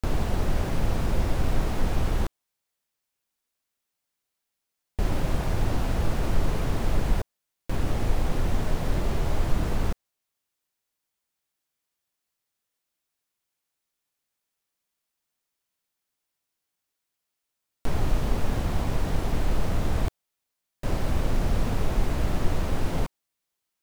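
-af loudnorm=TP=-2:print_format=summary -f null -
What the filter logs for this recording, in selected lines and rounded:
Input Integrated:    -29.5 LUFS
Input True Peak:      -9.2 dBTP
Input LRA:             4.5 LU
Input Threshold:     -39.6 LUFS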